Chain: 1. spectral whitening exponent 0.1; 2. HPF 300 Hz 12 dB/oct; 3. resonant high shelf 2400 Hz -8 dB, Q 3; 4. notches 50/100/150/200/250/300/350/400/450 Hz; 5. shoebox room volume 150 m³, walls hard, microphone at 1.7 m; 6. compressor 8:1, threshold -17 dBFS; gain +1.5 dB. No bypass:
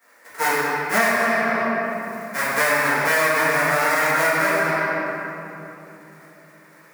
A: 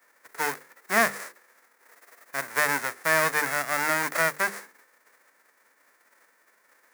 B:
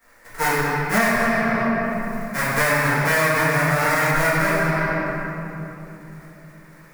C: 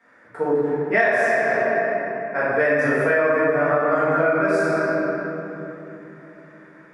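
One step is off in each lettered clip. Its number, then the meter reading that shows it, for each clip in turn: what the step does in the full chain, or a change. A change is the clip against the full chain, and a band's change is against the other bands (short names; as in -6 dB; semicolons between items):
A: 5, momentary loudness spread change +5 LU; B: 2, crest factor change -2.0 dB; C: 1, 1 kHz band -6.0 dB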